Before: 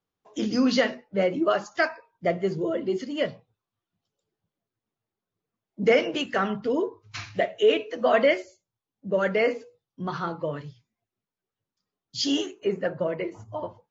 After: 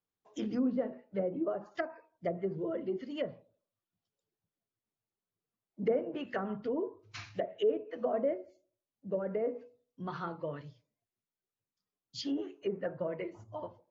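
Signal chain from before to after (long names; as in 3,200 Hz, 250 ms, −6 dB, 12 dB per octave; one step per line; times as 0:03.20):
treble cut that deepens with the level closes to 620 Hz, closed at −19.5 dBFS
delay with a band-pass on its return 82 ms, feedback 35%, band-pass 410 Hz, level −20.5 dB
level −8.5 dB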